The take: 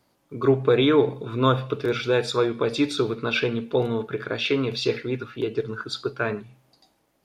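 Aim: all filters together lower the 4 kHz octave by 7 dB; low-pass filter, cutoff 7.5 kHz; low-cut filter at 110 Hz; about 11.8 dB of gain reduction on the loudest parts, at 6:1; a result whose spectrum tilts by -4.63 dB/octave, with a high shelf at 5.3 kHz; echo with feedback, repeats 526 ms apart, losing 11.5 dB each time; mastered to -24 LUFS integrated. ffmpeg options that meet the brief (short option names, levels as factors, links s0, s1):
-af "highpass=110,lowpass=7500,equalizer=f=4000:t=o:g=-6.5,highshelf=f=5300:g=-4.5,acompressor=threshold=0.0447:ratio=6,aecho=1:1:526|1052|1578:0.266|0.0718|0.0194,volume=2.51"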